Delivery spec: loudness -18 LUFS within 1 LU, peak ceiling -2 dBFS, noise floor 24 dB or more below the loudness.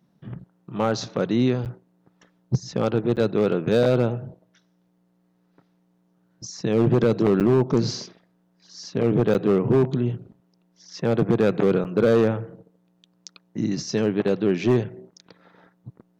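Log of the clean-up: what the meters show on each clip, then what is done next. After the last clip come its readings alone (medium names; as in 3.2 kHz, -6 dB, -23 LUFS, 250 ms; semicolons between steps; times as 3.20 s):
clipped samples 1.3%; clipping level -12.0 dBFS; dropouts 5; longest dropout 8.5 ms; loudness -22.5 LUFS; peak level -12.0 dBFS; loudness target -18.0 LUFS
-> clip repair -12 dBFS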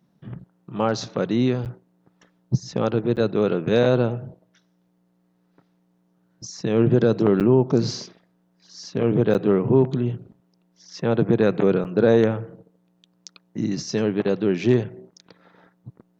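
clipped samples 0.0%; dropouts 5; longest dropout 8.5 ms
-> interpolate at 1.65/3.16/7.40/9.34/11.84 s, 8.5 ms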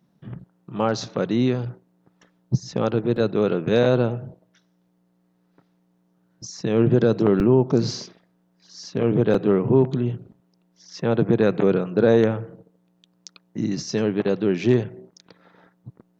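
dropouts 0; loudness -21.5 LUFS; peak level -6.0 dBFS; loudness target -18.0 LUFS
-> trim +3.5 dB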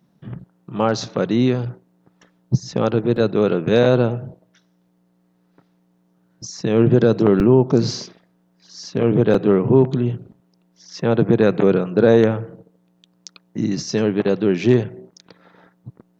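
loudness -18.0 LUFS; peak level -2.5 dBFS; noise floor -62 dBFS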